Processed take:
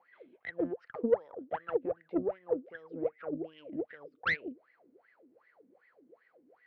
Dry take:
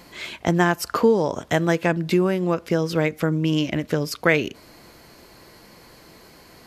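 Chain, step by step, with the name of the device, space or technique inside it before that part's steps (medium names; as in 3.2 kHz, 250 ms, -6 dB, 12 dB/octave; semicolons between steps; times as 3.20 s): wah-wah guitar rig (wah-wah 2.6 Hz 250–2000 Hz, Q 18; valve stage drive 25 dB, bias 0.6; cabinet simulation 82–3800 Hz, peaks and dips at 110 Hz +4 dB, 490 Hz +9 dB, 1 kHz -7 dB); trim +2 dB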